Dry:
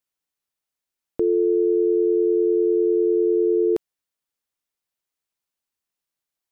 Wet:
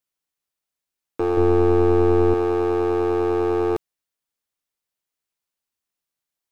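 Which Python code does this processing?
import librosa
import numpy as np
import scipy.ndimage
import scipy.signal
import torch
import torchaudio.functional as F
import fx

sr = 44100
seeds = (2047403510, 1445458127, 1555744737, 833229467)

y = np.minimum(x, 2.0 * 10.0 ** (-18.0 / 20.0) - x)
y = fx.low_shelf(y, sr, hz=260.0, db=11.5, at=(1.37, 2.34))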